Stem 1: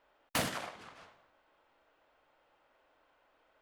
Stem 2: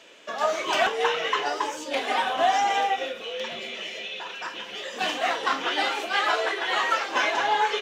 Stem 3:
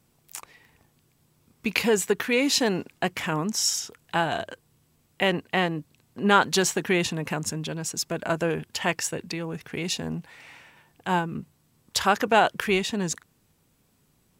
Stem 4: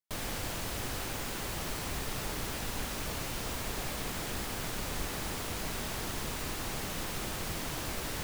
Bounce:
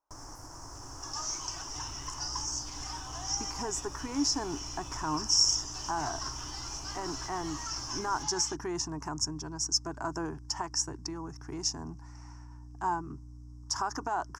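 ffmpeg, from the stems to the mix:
-filter_complex "[0:a]aexciter=amount=6.4:drive=6.7:freq=9600,volume=0.168[s0];[1:a]highpass=1300,highshelf=f=2100:t=q:w=1.5:g=10,alimiter=limit=0.168:level=0:latency=1:release=118,adelay=750,volume=0.335[s1];[2:a]aeval=exprs='val(0)+0.00891*(sin(2*PI*60*n/s)+sin(2*PI*2*60*n/s)/2+sin(2*PI*3*60*n/s)/3+sin(2*PI*4*60*n/s)/4+sin(2*PI*5*60*n/s)/5)':c=same,adelay=1750,volume=0.596[s2];[3:a]volume=0.562[s3];[s0][s3]amix=inputs=2:normalize=0,equalizer=f=4300:w=1.5:g=-3.5,alimiter=level_in=3.16:limit=0.0631:level=0:latency=1:release=200,volume=0.316,volume=1[s4];[s1][s2]amix=inputs=2:normalize=0,equalizer=f=530:w=7.3:g=-14,alimiter=limit=0.0944:level=0:latency=1:release=69,volume=1[s5];[s4][s5]amix=inputs=2:normalize=0,firequalizer=gain_entry='entry(130,0);entry(200,-16);entry(290,3);entry(480,-9);entry(960,6);entry(2300,-20);entry(3800,-22);entry(5400,11);entry(8600,-7);entry(13000,-20)':delay=0.05:min_phase=1"

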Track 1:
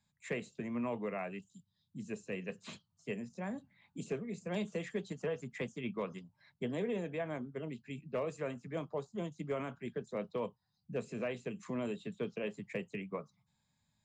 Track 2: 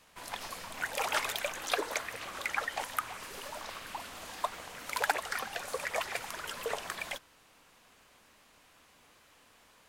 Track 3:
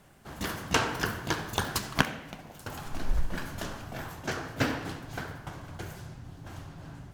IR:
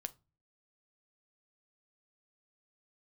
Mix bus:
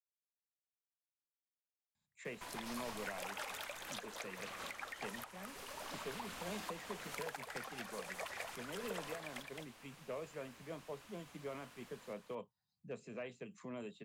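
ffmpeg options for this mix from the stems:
-filter_complex "[0:a]lowshelf=f=350:g=-4.5,adelay=1950,volume=0.473[s0];[1:a]acompressor=threshold=0.00398:ratio=2.5,adelay=2250,volume=1.06,asplit=2[s1][s2];[s2]volume=0.562,aecho=0:1:215:1[s3];[s0][s1][s3]amix=inputs=3:normalize=0,asoftclip=type=tanh:threshold=0.0708,alimiter=level_in=2.24:limit=0.0631:level=0:latency=1:release=454,volume=0.447"

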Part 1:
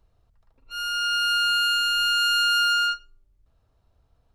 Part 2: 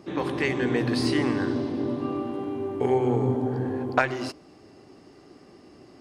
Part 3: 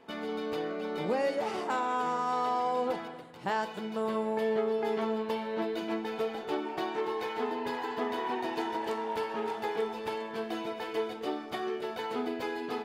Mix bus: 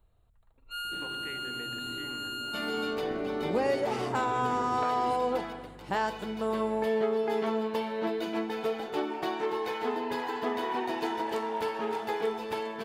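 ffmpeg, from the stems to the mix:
-filter_complex "[0:a]volume=0.708[s0];[1:a]aeval=exprs='val(0)+0.00501*(sin(2*PI*50*n/s)+sin(2*PI*2*50*n/s)/2+sin(2*PI*3*50*n/s)/3+sin(2*PI*4*50*n/s)/4+sin(2*PI*5*50*n/s)/5)':c=same,adelay=850,volume=0.473[s1];[2:a]adelay=2450,volume=1.19[s2];[s0][s1]amix=inputs=2:normalize=0,asuperstop=centerf=5400:order=20:qfactor=2.2,acompressor=threshold=0.02:ratio=16,volume=1[s3];[s2][s3]amix=inputs=2:normalize=0,highshelf=f=9800:g=3.5"

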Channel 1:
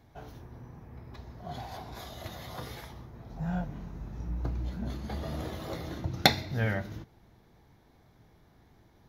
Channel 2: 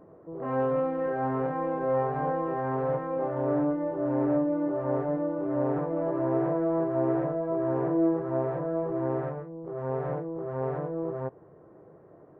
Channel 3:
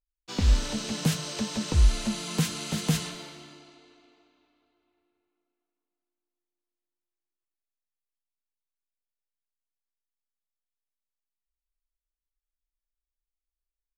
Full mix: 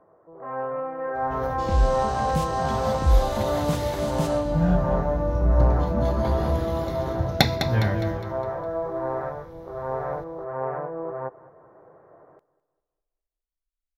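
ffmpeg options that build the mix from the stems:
-filter_complex "[0:a]adelay=1150,volume=0.944,asplit=2[s0][s1];[s1]volume=0.376[s2];[1:a]acrossover=split=590 2200:gain=0.112 1 0.0708[s3][s4][s5];[s3][s4][s5]amix=inputs=3:normalize=0,volume=1.19,asplit=2[s6][s7];[s7]volume=0.106[s8];[2:a]adelay=1300,volume=0.2[s9];[s2][s8]amix=inputs=2:normalize=0,aecho=0:1:205|410|615|820|1025|1230:1|0.4|0.16|0.064|0.0256|0.0102[s10];[s0][s6][s9][s10]amix=inputs=4:normalize=0,lowshelf=f=180:g=9.5,dynaudnorm=f=190:g=11:m=2.11"

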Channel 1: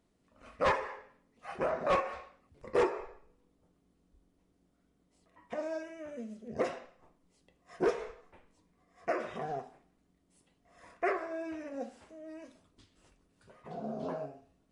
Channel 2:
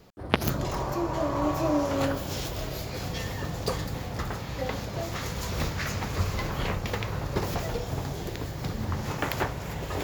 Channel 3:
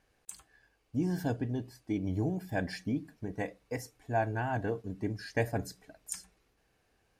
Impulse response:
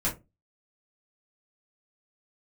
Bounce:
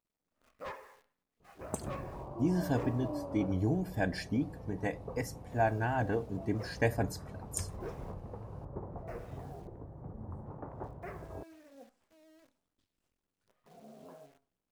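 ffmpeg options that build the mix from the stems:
-filter_complex "[0:a]acrusher=bits=9:dc=4:mix=0:aa=0.000001,volume=0.178[s0];[1:a]lowpass=f=1000:w=0.5412,lowpass=f=1000:w=1.3066,adelay=1400,volume=0.224[s1];[2:a]adelay=1450,volume=1.12[s2];[s0][s1][s2]amix=inputs=3:normalize=0"

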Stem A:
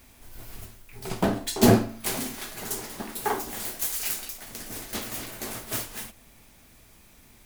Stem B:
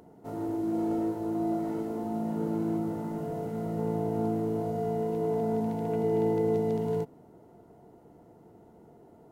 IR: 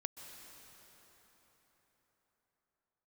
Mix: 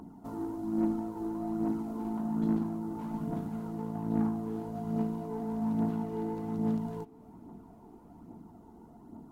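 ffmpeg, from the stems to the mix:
-filter_complex "[0:a]acompressor=threshold=0.0316:ratio=4,lowpass=2200,adelay=950,volume=0.15[s0];[1:a]bass=f=250:g=8,treble=f=4000:g=2,acompressor=threshold=0.0126:ratio=2,aphaser=in_gain=1:out_gain=1:delay=2.7:decay=0.45:speed=1.2:type=triangular,volume=0.891,asplit=2[s1][s2];[s2]volume=0.178[s3];[2:a]atrim=start_sample=2205[s4];[s3][s4]afir=irnorm=-1:irlink=0[s5];[s0][s1][s5]amix=inputs=3:normalize=0,equalizer=f=125:t=o:w=1:g=-10,equalizer=f=250:t=o:w=1:g=11,equalizer=f=500:t=o:w=1:g=-11,equalizer=f=1000:t=o:w=1:g=10,equalizer=f=2000:t=o:w=1:g=-6,aeval=exprs='0.133*(cos(1*acos(clip(val(0)/0.133,-1,1)))-cos(1*PI/2))+0.00596*(cos(6*acos(clip(val(0)/0.133,-1,1)))-cos(6*PI/2))+0.00422*(cos(7*acos(clip(val(0)/0.133,-1,1)))-cos(7*PI/2))+0.00473*(cos(8*acos(clip(val(0)/0.133,-1,1)))-cos(8*PI/2))':c=same"

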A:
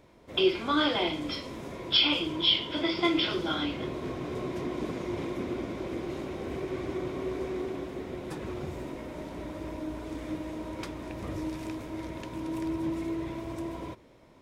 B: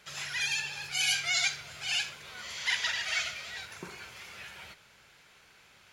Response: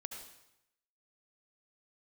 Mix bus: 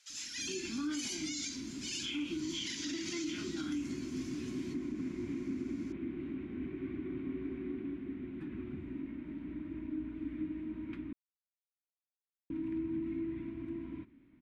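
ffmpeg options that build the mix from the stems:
-filter_complex "[0:a]firequalizer=gain_entry='entry(150,0);entry(270,12);entry(490,-20);entry(1500,-3);entry(2400,-1);entry(5300,-26)':delay=0.05:min_phase=1,adelay=100,volume=0.398,asplit=3[s0][s1][s2];[s0]atrim=end=11.13,asetpts=PTS-STARTPTS,afade=t=out:st=11.126:d=0.004:c=hsin[s3];[s1]atrim=start=11.13:end=12.5,asetpts=PTS-STARTPTS,volume=0[s4];[s2]atrim=start=12.5,asetpts=PTS-STARTPTS,afade=t=in:d=0.004:c=hsin[s5];[s3][s4][s5]concat=n=3:v=0:a=1[s6];[1:a]bandpass=f=6300:t=q:w=1.8:csg=0,volume=1.19[s7];[s6][s7]amix=inputs=2:normalize=0,alimiter=level_in=1.88:limit=0.0631:level=0:latency=1:release=77,volume=0.531"

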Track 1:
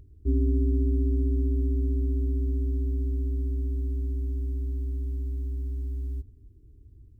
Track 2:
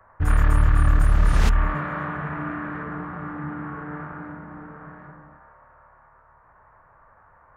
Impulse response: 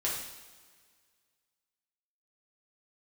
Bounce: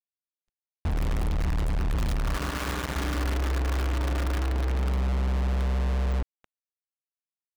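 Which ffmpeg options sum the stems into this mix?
-filter_complex "[0:a]aeval=exprs='val(0)+0.00224*(sin(2*PI*50*n/s)+sin(2*PI*2*50*n/s)/2+sin(2*PI*3*50*n/s)/3+sin(2*PI*4*50*n/s)/4+sin(2*PI*5*50*n/s)/5)':c=same,lowshelf=f=320:g=6.5,volume=0.944,afade=t=in:st=1.81:d=0.2:silence=0.421697,afade=t=in:st=2.85:d=0.7:silence=0.446684,afade=t=in:st=4.43:d=0.67:silence=0.446684,asplit=2[s0][s1];[s1]volume=0.266[s2];[1:a]acompressor=threshold=0.0282:ratio=1.5,equalizer=f=67:t=o:w=1.9:g=14.5,aecho=1:1:3.5:0.62,adelay=650,volume=0.299,asplit=2[s3][s4];[s4]volume=0.133[s5];[2:a]atrim=start_sample=2205[s6];[s2][s5]amix=inputs=2:normalize=0[s7];[s7][s6]afir=irnorm=-1:irlink=0[s8];[s0][s3][s8]amix=inputs=3:normalize=0,asoftclip=type=hard:threshold=0.0398,acrusher=bits=4:mix=0:aa=0.000001,anlmdn=3.98"

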